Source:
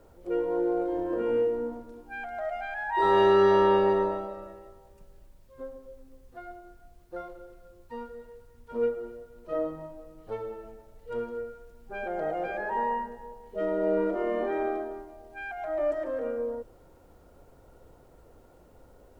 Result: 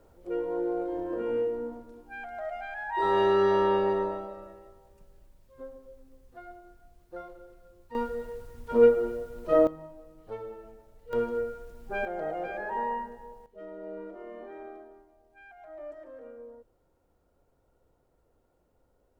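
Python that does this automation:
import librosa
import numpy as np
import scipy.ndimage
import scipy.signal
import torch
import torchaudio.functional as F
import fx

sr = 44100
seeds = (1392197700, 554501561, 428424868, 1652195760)

y = fx.gain(x, sr, db=fx.steps((0.0, -3.0), (7.95, 9.0), (9.67, -3.5), (11.13, 5.0), (12.05, -2.5), (13.46, -14.5)))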